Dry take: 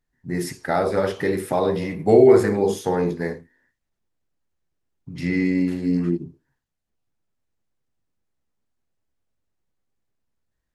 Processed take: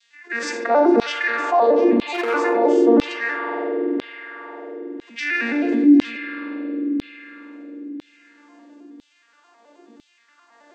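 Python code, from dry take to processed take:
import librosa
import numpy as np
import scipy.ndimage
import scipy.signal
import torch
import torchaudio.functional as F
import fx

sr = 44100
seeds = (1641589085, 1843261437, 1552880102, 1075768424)

p1 = fx.vocoder_arp(x, sr, chord='major triad', root=58, every_ms=106)
p2 = fx.rev_spring(p1, sr, rt60_s=3.0, pass_ms=(45,), chirp_ms=35, drr_db=4.5)
p3 = np.clip(p2, -10.0 ** (-10.5 / 20.0), 10.0 ** (-10.5 / 20.0))
p4 = p2 + (p3 * librosa.db_to_amplitude(-10.5))
p5 = fx.filter_lfo_highpass(p4, sr, shape='saw_down', hz=1.0, low_hz=250.0, high_hz=3600.0, q=2.3)
p6 = fx.env_flatten(p5, sr, amount_pct=50)
y = p6 * librosa.db_to_amplitude(-3.0)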